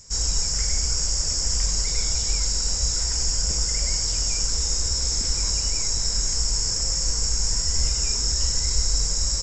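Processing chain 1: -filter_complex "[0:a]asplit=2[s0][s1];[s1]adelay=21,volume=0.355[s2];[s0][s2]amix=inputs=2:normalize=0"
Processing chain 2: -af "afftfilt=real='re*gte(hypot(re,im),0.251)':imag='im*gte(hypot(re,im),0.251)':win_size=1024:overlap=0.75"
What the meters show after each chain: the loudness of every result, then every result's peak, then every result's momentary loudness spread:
-21.5 LUFS, -30.5 LUFS; -6.5 dBFS, -12.0 dBFS; 1 LU, 4 LU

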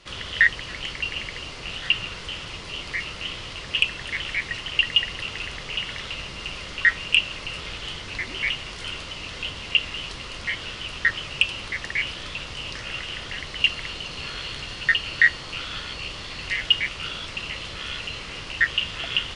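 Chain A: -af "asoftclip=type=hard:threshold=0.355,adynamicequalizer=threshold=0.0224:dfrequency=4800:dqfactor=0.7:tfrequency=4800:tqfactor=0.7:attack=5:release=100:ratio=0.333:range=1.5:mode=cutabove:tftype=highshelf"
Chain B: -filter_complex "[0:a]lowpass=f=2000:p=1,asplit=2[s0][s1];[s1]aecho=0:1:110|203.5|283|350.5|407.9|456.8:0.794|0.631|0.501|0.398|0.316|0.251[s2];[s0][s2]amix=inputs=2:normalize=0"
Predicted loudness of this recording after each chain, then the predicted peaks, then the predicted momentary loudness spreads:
-26.0 LUFS, -25.0 LUFS; -9.0 dBFS, -5.5 dBFS; 12 LU, 12 LU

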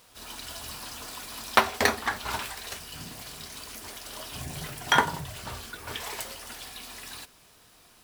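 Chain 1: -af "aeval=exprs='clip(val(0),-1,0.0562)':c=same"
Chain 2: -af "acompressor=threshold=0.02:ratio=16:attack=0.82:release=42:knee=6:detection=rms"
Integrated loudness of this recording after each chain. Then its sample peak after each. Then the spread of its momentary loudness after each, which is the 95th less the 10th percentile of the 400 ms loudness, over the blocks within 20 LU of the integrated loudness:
-33.0 LUFS, -40.5 LUFS; -2.0 dBFS, -24.5 dBFS; 14 LU, 3 LU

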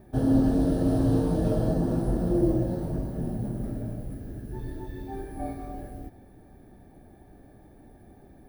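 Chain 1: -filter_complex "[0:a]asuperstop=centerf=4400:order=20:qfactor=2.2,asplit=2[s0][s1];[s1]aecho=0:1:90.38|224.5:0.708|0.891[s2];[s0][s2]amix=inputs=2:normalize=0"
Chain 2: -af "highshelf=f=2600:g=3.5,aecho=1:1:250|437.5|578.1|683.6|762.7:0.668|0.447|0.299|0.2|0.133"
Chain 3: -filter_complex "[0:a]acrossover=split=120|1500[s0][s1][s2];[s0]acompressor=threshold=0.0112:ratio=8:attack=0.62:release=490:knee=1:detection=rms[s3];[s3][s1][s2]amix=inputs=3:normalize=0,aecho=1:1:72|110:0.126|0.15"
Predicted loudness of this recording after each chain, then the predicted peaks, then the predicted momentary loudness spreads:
-22.5 LUFS, -24.0 LUFS, -29.0 LUFS; -7.0 dBFS, -8.0 dBFS, -12.5 dBFS; 18 LU, 16 LU, 15 LU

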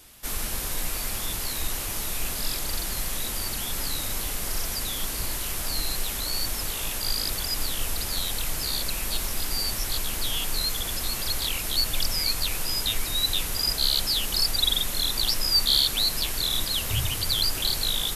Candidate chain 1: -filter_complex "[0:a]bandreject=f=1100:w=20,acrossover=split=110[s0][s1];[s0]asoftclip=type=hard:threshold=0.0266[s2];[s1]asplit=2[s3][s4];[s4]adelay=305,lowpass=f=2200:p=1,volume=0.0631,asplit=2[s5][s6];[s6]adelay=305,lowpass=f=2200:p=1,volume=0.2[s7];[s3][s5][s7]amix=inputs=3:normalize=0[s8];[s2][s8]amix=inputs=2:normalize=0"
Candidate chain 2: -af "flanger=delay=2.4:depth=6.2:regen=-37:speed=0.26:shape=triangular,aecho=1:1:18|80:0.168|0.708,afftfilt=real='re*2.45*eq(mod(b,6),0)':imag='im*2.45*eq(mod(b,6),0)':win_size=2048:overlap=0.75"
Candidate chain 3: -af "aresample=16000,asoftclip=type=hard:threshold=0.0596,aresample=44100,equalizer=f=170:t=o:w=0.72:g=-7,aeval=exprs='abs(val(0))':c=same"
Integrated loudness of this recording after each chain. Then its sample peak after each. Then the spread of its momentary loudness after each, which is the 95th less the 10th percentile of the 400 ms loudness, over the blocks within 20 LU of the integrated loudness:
-25.5 LUFS, -30.5 LUFS, -33.5 LUFS; -9.0 dBFS, -14.5 dBFS, -19.0 dBFS; 7 LU, 7 LU, 4 LU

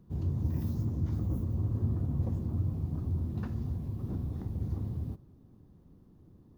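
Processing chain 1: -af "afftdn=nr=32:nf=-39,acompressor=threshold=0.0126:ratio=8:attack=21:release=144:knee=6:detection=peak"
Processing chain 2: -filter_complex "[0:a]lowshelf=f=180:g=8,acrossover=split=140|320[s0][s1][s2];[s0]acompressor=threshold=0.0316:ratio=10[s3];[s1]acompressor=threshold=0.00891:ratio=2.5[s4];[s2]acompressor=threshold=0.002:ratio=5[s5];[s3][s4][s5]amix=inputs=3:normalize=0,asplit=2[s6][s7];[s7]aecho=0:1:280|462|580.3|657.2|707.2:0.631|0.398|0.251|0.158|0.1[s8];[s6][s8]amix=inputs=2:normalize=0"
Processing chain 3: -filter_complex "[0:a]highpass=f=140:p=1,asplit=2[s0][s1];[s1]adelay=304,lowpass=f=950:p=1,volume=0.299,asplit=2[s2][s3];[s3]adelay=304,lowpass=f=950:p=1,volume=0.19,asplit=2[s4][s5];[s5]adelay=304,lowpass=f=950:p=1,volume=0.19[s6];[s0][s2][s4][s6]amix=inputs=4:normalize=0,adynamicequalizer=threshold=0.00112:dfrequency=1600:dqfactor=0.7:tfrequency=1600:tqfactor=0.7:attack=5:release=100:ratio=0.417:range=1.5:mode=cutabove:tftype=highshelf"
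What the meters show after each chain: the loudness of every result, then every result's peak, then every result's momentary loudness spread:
-41.5 LUFS, -32.0 LUFS, -37.5 LUFS; -29.0 dBFS, -17.5 dBFS, -22.5 dBFS; 1 LU, 8 LU, 6 LU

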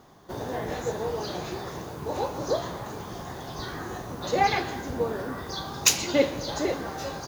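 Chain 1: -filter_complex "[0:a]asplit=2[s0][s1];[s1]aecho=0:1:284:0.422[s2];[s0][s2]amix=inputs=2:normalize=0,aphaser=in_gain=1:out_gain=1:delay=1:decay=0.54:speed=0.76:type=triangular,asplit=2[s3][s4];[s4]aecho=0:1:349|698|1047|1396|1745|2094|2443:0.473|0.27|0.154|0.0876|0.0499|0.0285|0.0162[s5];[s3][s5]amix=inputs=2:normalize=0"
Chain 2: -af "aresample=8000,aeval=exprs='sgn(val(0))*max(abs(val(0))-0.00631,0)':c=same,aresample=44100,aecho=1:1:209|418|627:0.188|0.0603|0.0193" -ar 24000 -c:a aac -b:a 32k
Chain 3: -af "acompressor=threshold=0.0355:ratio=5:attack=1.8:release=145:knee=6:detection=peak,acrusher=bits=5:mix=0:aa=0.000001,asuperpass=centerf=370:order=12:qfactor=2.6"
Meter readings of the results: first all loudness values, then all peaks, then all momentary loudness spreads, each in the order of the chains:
-26.0 LUFS, -31.0 LUFS, -44.0 LUFS; -2.0 dBFS, -9.5 dBFS, -26.0 dBFS; 11 LU, 15 LU, 6 LU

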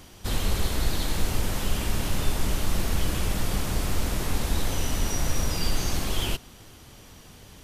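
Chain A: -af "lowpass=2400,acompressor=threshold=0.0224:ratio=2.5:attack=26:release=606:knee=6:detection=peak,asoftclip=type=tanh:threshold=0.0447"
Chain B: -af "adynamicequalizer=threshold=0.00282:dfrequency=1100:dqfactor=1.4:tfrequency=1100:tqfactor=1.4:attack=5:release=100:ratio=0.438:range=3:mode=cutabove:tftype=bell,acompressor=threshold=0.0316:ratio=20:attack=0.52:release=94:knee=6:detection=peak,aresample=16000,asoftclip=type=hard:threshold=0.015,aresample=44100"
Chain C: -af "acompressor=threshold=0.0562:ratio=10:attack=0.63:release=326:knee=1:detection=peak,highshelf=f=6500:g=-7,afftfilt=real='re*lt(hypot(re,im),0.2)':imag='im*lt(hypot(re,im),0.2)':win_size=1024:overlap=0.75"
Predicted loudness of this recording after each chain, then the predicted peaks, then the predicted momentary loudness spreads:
-41.5 LUFS, -44.0 LUFS, -38.5 LUFS; -27.5 dBFS, -33.0 dBFS, -24.0 dBFS; 11 LU, 6 LU, 11 LU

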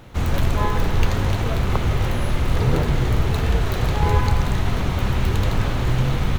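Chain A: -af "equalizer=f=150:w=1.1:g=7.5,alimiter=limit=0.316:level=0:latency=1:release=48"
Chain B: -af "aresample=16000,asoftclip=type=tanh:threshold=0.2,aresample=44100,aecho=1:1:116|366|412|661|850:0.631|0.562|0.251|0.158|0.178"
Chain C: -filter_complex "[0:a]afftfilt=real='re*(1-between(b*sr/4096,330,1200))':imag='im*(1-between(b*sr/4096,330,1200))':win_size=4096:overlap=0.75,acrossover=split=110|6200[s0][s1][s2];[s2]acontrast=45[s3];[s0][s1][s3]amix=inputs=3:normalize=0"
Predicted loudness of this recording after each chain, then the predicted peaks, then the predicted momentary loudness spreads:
-20.5 LUFS, -21.5 LUFS, -22.5 LUFS; -10.0 dBFS, -8.0 dBFS, -4.0 dBFS; 2 LU, 2 LU, 3 LU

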